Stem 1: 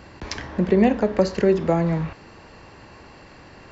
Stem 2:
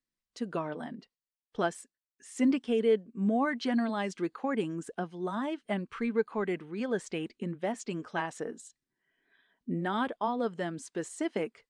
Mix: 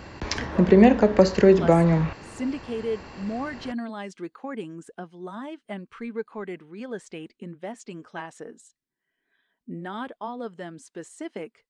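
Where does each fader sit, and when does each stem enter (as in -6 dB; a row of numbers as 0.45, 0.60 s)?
+2.5, -3.0 dB; 0.00, 0.00 s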